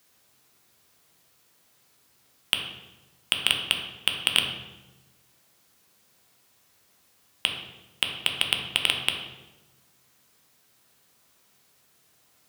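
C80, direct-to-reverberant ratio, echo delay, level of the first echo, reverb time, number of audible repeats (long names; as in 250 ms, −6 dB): 7.5 dB, 2.0 dB, no echo audible, no echo audible, 1.1 s, no echo audible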